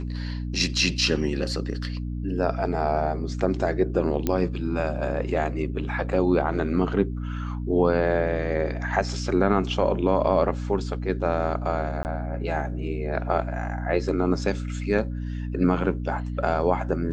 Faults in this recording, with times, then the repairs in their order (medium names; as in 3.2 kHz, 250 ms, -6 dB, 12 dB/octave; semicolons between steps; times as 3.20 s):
hum 60 Hz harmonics 5 -30 dBFS
4.27 s: pop -10 dBFS
12.03–12.05 s: dropout 19 ms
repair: de-click; de-hum 60 Hz, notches 5; interpolate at 12.03 s, 19 ms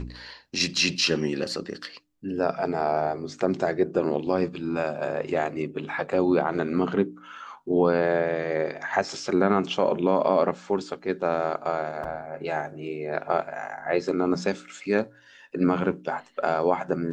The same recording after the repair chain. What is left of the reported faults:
nothing left